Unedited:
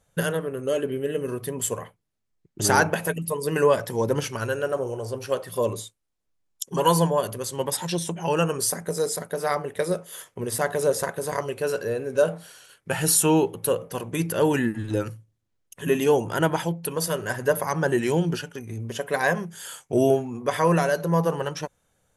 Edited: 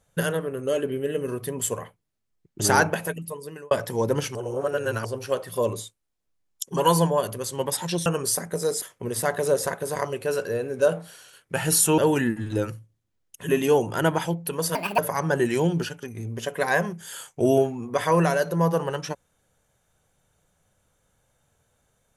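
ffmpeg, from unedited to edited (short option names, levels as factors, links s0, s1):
-filter_complex "[0:a]asplit=9[s0][s1][s2][s3][s4][s5][s6][s7][s8];[s0]atrim=end=3.71,asetpts=PTS-STARTPTS,afade=t=out:st=2.82:d=0.89[s9];[s1]atrim=start=3.71:end=4.352,asetpts=PTS-STARTPTS,afade=t=in:d=0.004:c=hsin[s10];[s2]atrim=start=4.348:end=5.052,asetpts=PTS-STARTPTS,areverse[s11];[s3]atrim=start=5.048:end=8.062[s12];[s4]atrim=start=8.408:end=9.172[s13];[s5]atrim=start=10.178:end=13.342[s14];[s6]atrim=start=14.358:end=17.134[s15];[s7]atrim=start=17.13:end=17.51,asetpts=PTS-STARTPTS,asetrate=71442,aresample=44100,atrim=end_sample=10344,asetpts=PTS-STARTPTS[s16];[s8]atrim=start=17.506[s17];[s9][s10]concat=n=2:v=0:a=1[s18];[s18][s11]acrossfade=d=0.004:c1=hsin:c2=hsin[s19];[s19][s12]acrossfade=d=0.004:c1=hsin:c2=hsin[s20];[s20][s13]acrossfade=d=0.004:c1=hsin:c2=hsin[s21];[s21][s14]acrossfade=d=0.004:c1=hsin:c2=hsin[s22];[s22][s15]acrossfade=d=0.004:c1=hsin:c2=hsin[s23];[s23][s16]acrossfade=d=0.004:c1=hsin:c2=hsin[s24];[s24][s17]acrossfade=d=0.004:c1=hsin:c2=hsin"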